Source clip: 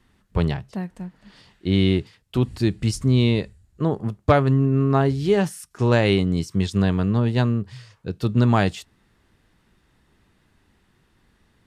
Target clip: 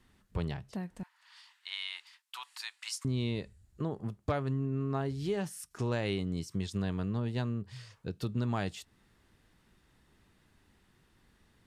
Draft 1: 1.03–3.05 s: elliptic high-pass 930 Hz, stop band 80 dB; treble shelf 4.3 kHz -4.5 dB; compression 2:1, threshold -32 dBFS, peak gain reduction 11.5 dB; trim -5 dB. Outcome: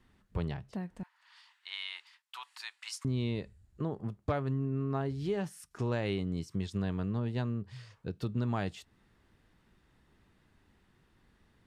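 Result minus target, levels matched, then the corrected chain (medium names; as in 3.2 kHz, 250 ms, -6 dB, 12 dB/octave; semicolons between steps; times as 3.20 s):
8 kHz band -4.5 dB
1.03–3.05 s: elliptic high-pass 930 Hz, stop band 80 dB; treble shelf 4.3 kHz +3.5 dB; compression 2:1, threshold -32 dBFS, peak gain reduction 11.5 dB; trim -5 dB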